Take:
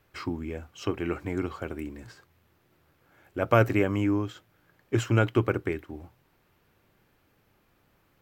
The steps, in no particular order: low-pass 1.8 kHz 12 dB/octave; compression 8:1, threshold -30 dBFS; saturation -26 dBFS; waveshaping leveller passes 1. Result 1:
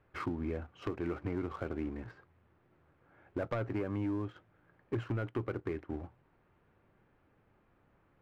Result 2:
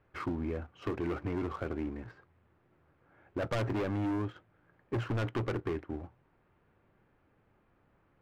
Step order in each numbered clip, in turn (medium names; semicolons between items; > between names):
low-pass > waveshaping leveller > compression > saturation; low-pass > waveshaping leveller > saturation > compression